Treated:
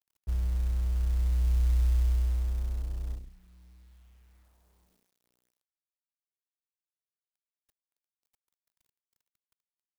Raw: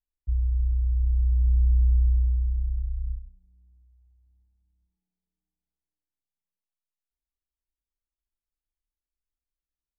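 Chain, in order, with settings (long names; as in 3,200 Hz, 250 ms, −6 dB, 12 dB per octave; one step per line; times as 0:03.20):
mu-law and A-law mismatch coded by mu
low-shelf EQ 110 Hz −11.5 dB
level +3.5 dB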